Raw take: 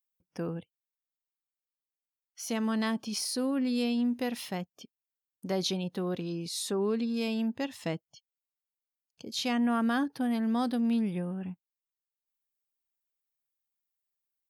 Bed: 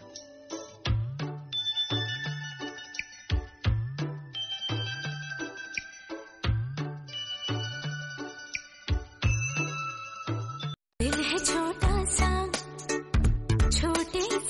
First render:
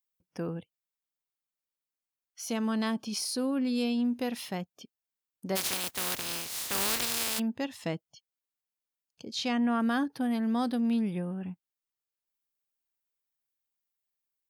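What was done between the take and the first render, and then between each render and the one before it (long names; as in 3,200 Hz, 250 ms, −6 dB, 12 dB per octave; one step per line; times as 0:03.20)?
0:02.45–0:04.28: notch filter 1,900 Hz, Q 11
0:05.55–0:07.38: compressing power law on the bin magnitudes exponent 0.15
0:09.25–0:09.80: low-pass filter 7,300 Hz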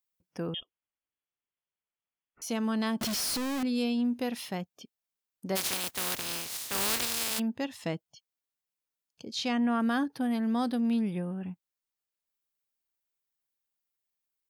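0:00.54–0:02.42: voice inversion scrambler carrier 3,400 Hz
0:03.01–0:03.63: sign of each sample alone
0:06.57–0:07.31: multiband upward and downward expander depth 40%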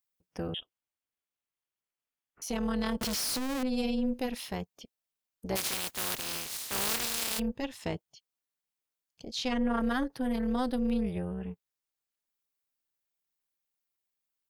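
in parallel at −7.5 dB: soft clipping −28.5 dBFS, distortion −12 dB
on the sum: amplitude modulation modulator 260 Hz, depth 65%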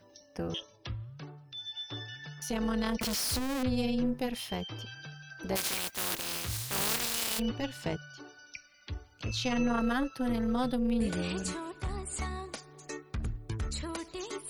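mix in bed −11 dB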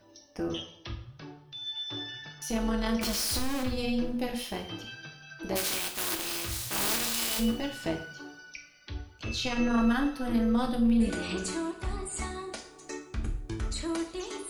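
coupled-rooms reverb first 0.5 s, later 2.6 s, from −28 dB, DRR 2.5 dB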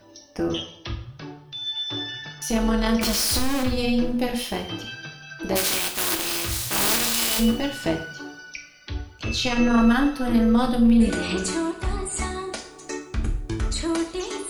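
level +7.5 dB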